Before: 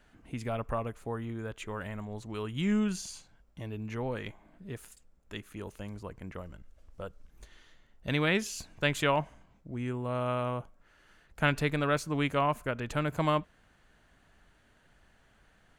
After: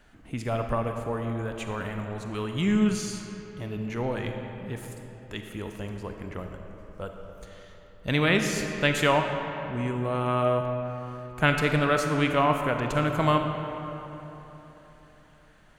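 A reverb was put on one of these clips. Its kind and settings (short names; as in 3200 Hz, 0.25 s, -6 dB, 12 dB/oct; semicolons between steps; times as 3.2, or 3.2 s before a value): digital reverb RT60 3.6 s, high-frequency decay 0.55×, pre-delay 5 ms, DRR 4 dB; gain +4.5 dB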